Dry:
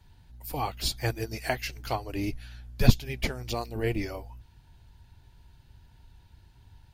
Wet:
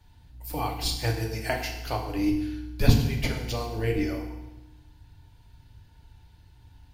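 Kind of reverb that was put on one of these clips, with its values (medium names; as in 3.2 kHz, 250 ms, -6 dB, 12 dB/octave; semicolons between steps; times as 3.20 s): FDN reverb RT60 0.99 s, low-frequency decay 1.3×, high-frequency decay 0.95×, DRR 1.5 dB; trim -1 dB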